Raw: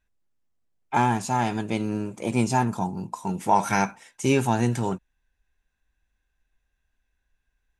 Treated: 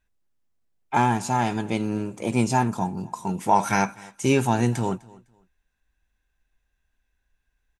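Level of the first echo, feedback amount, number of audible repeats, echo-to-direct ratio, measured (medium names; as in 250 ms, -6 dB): -23.0 dB, no regular repeats, 1, -23.0 dB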